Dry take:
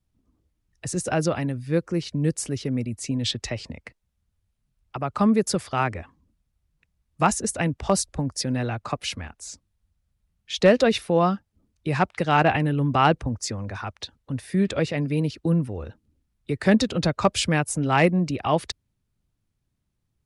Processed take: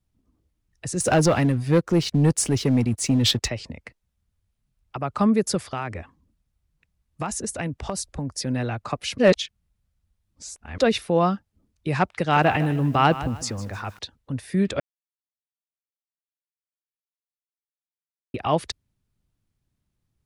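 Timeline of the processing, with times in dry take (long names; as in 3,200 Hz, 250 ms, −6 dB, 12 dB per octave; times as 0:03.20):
0:01.00–0:03.48: leveller curve on the samples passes 2
0:05.70–0:08.46: downward compressor, threshold −24 dBFS
0:09.18–0:10.78: reverse
0:12.10–0:13.99: feedback echo at a low word length 154 ms, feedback 35%, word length 7 bits, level −14 dB
0:14.80–0:18.34: silence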